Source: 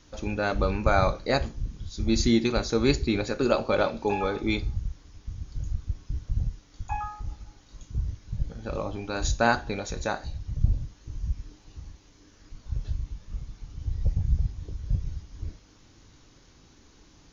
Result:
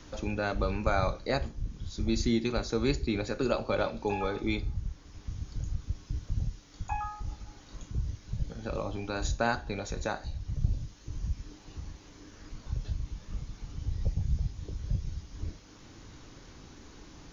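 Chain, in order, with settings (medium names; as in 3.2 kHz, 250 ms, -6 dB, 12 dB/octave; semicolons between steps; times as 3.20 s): three bands compressed up and down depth 40%; trim -4 dB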